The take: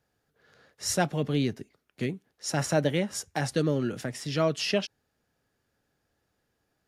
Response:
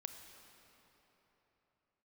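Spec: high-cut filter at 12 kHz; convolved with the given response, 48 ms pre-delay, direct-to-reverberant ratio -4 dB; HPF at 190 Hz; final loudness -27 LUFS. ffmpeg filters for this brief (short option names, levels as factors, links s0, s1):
-filter_complex "[0:a]highpass=190,lowpass=12000,asplit=2[s0][s1];[1:a]atrim=start_sample=2205,adelay=48[s2];[s1][s2]afir=irnorm=-1:irlink=0,volume=2.37[s3];[s0][s3]amix=inputs=2:normalize=0,volume=0.841"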